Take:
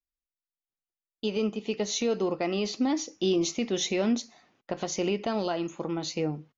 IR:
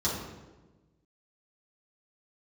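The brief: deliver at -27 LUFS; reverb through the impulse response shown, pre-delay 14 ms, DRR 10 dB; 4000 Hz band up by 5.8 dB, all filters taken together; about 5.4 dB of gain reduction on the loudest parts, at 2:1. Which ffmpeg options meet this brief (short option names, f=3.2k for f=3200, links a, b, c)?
-filter_complex "[0:a]equalizer=f=4k:t=o:g=7,acompressor=threshold=-31dB:ratio=2,asplit=2[a][b];[1:a]atrim=start_sample=2205,adelay=14[c];[b][c]afir=irnorm=-1:irlink=0,volume=-19dB[d];[a][d]amix=inputs=2:normalize=0,volume=4.5dB"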